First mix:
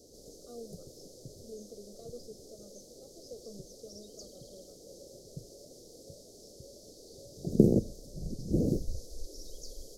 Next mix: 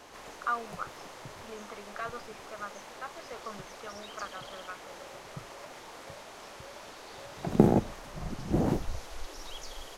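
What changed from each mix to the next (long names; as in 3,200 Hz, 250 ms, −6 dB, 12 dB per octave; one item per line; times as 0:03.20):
master: remove elliptic band-stop filter 510–4,800 Hz, stop band 40 dB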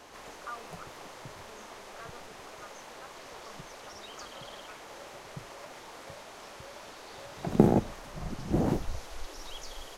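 speech −10.5 dB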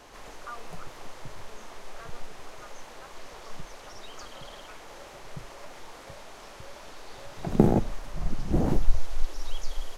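background: remove high-pass filter 110 Hz 6 dB per octave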